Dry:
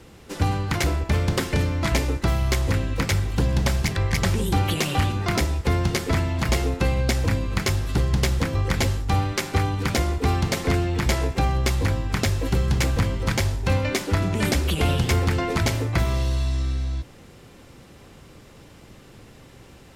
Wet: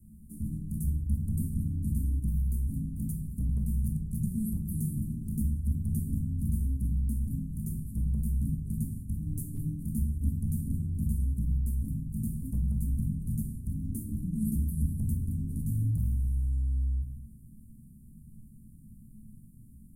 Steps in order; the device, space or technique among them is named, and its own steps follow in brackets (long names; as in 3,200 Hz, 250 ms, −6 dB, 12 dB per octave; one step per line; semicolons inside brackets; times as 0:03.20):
Chebyshev band-stop filter 230–9,500 Hz, order 4
mains-hum notches 50/100/150/200/250/300 Hz
clipper into limiter (hard clipping −14 dBFS, distortion −38 dB; brickwall limiter −21.5 dBFS, peak gain reduction 7.5 dB)
0:09.26–0:09.72: comb filter 7 ms, depth 75%
rectangular room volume 290 cubic metres, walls furnished, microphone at 1.4 metres
level −4.5 dB